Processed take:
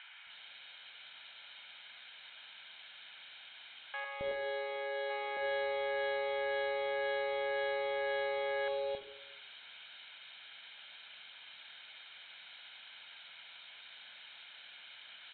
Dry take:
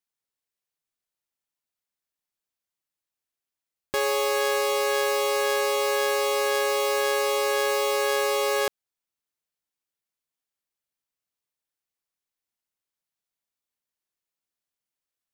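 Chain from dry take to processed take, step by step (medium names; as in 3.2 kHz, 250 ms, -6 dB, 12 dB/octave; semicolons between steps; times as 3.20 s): zero-crossing glitches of -23 dBFS; 4.04–5.10 s: Chebyshev high-pass 370 Hz, order 3; peak limiter -17.5 dBFS, peak gain reduction 9 dB; three bands offset in time mids, lows, highs 270/300 ms, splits 790/3000 Hz; reverberation RT60 0.90 s, pre-delay 28 ms, DRR 11 dB; resampled via 8 kHz; tape noise reduction on one side only encoder only; trim -6.5 dB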